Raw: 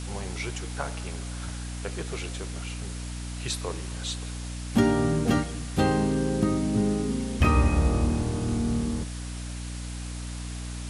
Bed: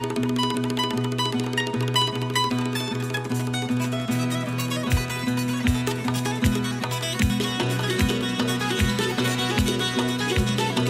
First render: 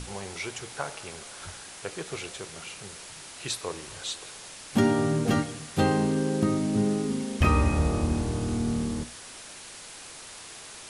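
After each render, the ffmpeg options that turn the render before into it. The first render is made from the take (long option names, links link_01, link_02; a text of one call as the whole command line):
ffmpeg -i in.wav -af "bandreject=frequency=60:width_type=h:width=6,bandreject=frequency=120:width_type=h:width=6,bandreject=frequency=180:width_type=h:width=6,bandreject=frequency=240:width_type=h:width=6,bandreject=frequency=300:width_type=h:width=6" out.wav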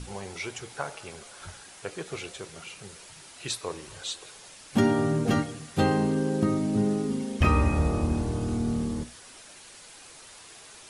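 ffmpeg -i in.wav -af "afftdn=noise_reduction=6:noise_floor=-44" out.wav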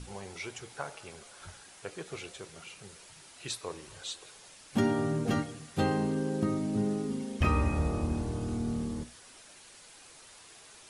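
ffmpeg -i in.wav -af "volume=-5dB" out.wav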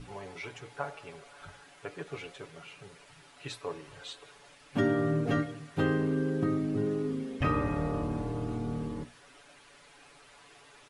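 ffmpeg -i in.wav -af "bass=frequency=250:gain=-2,treble=frequency=4000:gain=-13,aecho=1:1:7:0.74" out.wav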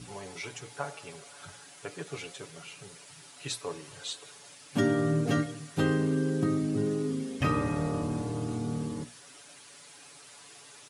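ffmpeg -i in.wav -af "highpass=110,bass=frequency=250:gain=4,treble=frequency=4000:gain=13" out.wav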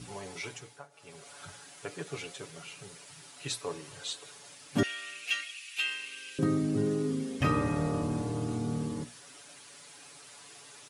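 ffmpeg -i in.wav -filter_complex "[0:a]asettb=1/sr,asplit=3[link_01][link_02][link_03];[link_01]atrim=end=4.834[link_04];[link_02]atrim=start=4.83:end=6.39,asetpts=PTS-STARTPTS,afade=type=in:duration=0.004:curve=qsin,afade=type=out:start_time=1.556:duration=0.004:curve=qsin,highpass=frequency=2600:width_type=q:width=7.7[link_05];[link_03]atrim=start=6.386[link_06];[link_04][link_05]acrossfade=duration=0.004:curve1=hsin:curve2=qsin[link_07];[link_07][link_06]acrossfade=duration=0.004:curve1=qsin:curve2=hsin,asplit=3[link_08][link_09][link_10];[link_08]atrim=end=0.88,asetpts=PTS-STARTPTS,afade=type=out:start_time=0.47:duration=0.41:silence=0.0749894[link_11];[link_09]atrim=start=0.88:end=0.9,asetpts=PTS-STARTPTS,volume=-22.5dB[link_12];[link_10]atrim=start=0.9,asetpts=PTS-STARTPTS,afade=type=in:duration=0.41:silence=0.0749894[link_13];[link_11][link_12][link_13]concat=n=3:v=0:a=1" out.wav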